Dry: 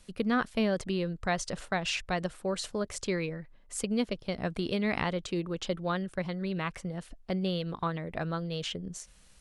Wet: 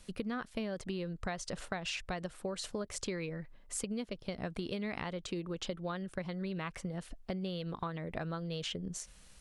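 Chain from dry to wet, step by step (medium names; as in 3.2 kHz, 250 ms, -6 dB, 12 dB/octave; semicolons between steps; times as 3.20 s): compression, threshold -36 dBFS, peak gain reduction 12.5 dB; trim +1 dB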